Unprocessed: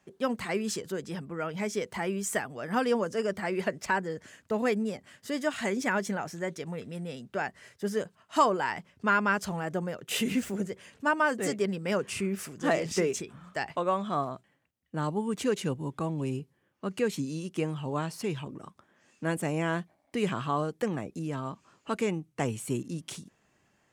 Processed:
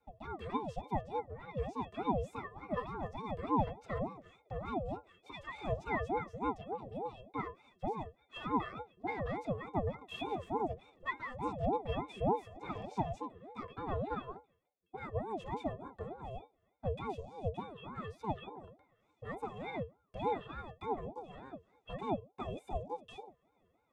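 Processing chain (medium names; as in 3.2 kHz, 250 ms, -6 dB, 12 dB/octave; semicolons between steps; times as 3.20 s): treble shelf 4 kHz +10 dB; saturation -26.5 dBFS, distortion -10 dB; pitch-class resonator F#, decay 0.17 s; ring modulator with a swept carrier 470 Hz, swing 45%, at 3.4 Hz; trim +8.5 dB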